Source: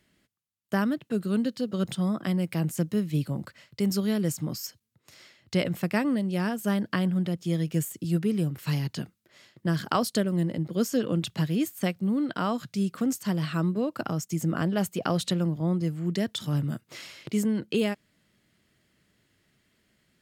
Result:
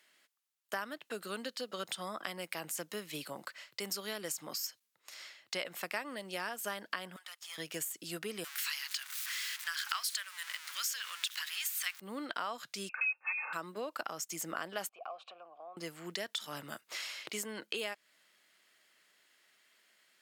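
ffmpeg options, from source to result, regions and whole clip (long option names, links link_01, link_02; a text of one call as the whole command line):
ffmpeg -i in.wav -filter_complex "[0:a]asettb=1/sr,asplit=3[link_01][link_02][link_03];[link_01]atrim=end=7.164[link_04];[link_02]atrim=start=7.16:end=7.58,asetpts=PTS-STARTPTS,afade=type=in:duration=0.004:curve=qsin,afade=type=out:start_time=0.416:duration=0.004:curve=qsin,highpass=frequency=1100:width=0.5412,highpass=frequency=1100:width=1.3066,aeval=exprs='(tanh(126*val(0)+0.65)-tanh(0.65))/126':channel_layout=same[link_05];[link_03]atrim=start=7.576[link_06];[link_04][link_05]acrossfade=duration=0.004:curve1=hsin:curve2=qsin[link_07];[link_07][link_06]acrossfade=duration=0.004:curve1=qsin:curve2=hsin,asettb=1/sr,asplit=3[link_08][link_09][link_10];[link_08]atrim=end=8.444[link_11];[link_09]atrim=start=8.44:end=12,asetpts=PTS-STARTPTS,afade=type=in:duration=0.004:curve=qsin,afade=type=out:start_time=3.556:duration=0.004:curve=qsin,aeval=exprs='val(0)+0.5*0.0133*sgn(val(0))':channel_layout=same,highpass=frequency=1400:width=0.5412,highpass=frequency=1400:width=1.3066,acontrast=34[link_12];[link_10]atrim=start=11.996[link_13];[link_11][link_12]acrossfade=duration=0.004:curve1=hsin:curve2=qsin[link_14];[link_14][link_13]acrossfade=duration=0.004:curve1=qsin:curve2=hsin,asettb=1/sr,asplit=3[link_15][link_16][link_17];[link_15]atrim=end=12.894[link_18];[link_16]atrim=start=12.89:end=13.53,asetpts=PTS-STARTPTS,afade=type=in:duration=0.004:curve=qsin,afade=type=out:start_time=0.636:duration=0.004:curve=qsin,aecho=1:1:3.1:0.87,atrim=end_sample=28224,lowpass=frequency=2400:width_type=q:width=0.5098,lowpass=frequency=2400:width_type=q:width=0.6013,lowpass=frequency=2400:width_type=q:width=0.9,lowpass=frequency=2400:width_type=q:width=2.563,afreqshift=-2800[link_19];[link_17]atrim=start=13.526[link_20];[link_18][link_19]acrossfade=duration=0.004:curve1=hsin:curve2=qsin[link_21];[link_21][link_20]acrossfade=duration=0.004:curve1=qsin:curve2=hsin,asettb=1/sr,asplit=3[link_22][link_23][link_24];[link_22]atrim=end=14.894[link_25];[link_23]atrim=start=14.89:end=15.77,asetpts=PTS-STARTPTS,afade=type=in:duration=0.004:curve=qsin,afade=type=out:start_time=0.876:duration=0.004:curve=qsin,asplit=2[link_26][link_27];[link_27]highpass=frequency=720:poles=1,volume=14dB,asoftclip=type=tanh:threshold=-11.5dB[link_28];[link_26][link_28]amix=inputs=2:normalize=0,lowpass=frequency=1100:poles=1,volume=-6dB,acompressor=threshold=-29dB:ratio=6:attack=3.2:release=140:knee=1:detection=peak,asplit=3[link_29][link_30][link_31];[link_29]bandpass=frequency=730:width_type=q:width=8,volume=0dB[link_32];[link_30]bandpass=frequency=1090:width_type=q:width=8,volume=-6dB[link_33];[link_31]bandpass=frequency=2440:width_type=q:width=8,volume=-9dB[link_34];[link_32][link_33][link_34]amix=inputs=3:normalize=0[link_35];[link_24]atrim=start=15.766[link_36];[link_25][link_35]acrossfade=duration=0.004:curve1=hsin:curve2=qsin[link_37];[link_37][link_36]acrossfade=duration=0.004:curve1=qsin:curve2=hsin,highpass=780,acompressor=threshold=-40dB:ratio=3,volume=3.5dB" out.wav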